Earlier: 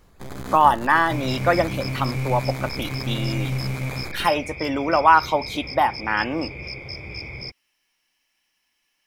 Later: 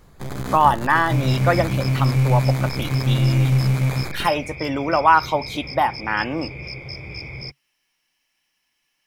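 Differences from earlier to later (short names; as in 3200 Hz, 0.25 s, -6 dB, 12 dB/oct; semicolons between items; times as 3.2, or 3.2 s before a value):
first sound +4.0 dB; master: add bell 140 Hz +7 dB 0.33 oct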